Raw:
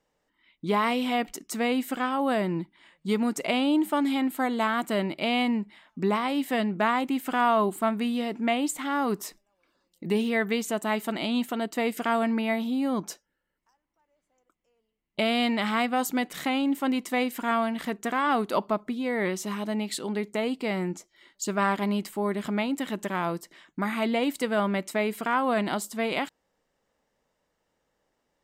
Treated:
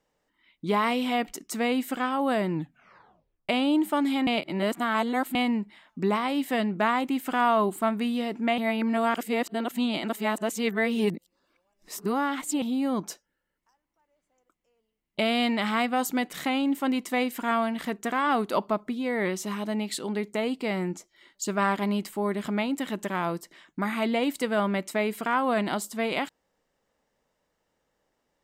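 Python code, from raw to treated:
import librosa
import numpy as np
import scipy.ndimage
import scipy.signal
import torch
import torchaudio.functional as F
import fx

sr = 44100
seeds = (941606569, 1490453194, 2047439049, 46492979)

y = fx.edit(x, sr, fx.tape_stop(start_s=2.53, length_s=0.96),
    fx.reverse_span(start_s=4.27, length_s=1.08),
    fx.reverse_span(start_s=8.58, length_s=4.04), tone=tone)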